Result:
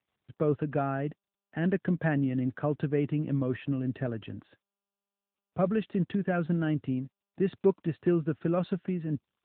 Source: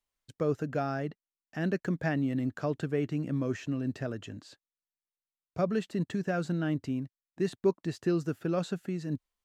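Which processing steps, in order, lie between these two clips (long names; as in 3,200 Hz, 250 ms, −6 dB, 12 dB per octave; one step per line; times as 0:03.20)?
low-pass that shuts in the quiet parts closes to 2,100 Hz, open at −25.5 dBFS
low-shelf EQ 79 Hz +7 dB
level +2 dB
AMR narrowband 10.2 kbit/s 8,000 Hz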